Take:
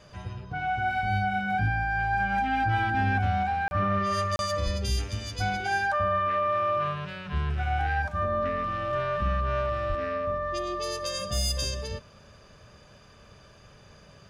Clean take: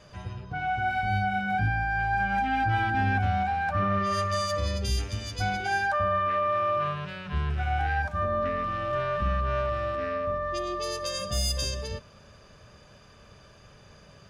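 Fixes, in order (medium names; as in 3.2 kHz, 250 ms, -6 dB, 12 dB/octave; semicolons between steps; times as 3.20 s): 4.64–4.76 s: high-pass 140 Hz 24 dB/octave; 9.88–10.00 s: high-pass 140 Hz 24 dB/octave; interpolate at 3.68/4.36 s, 31 ms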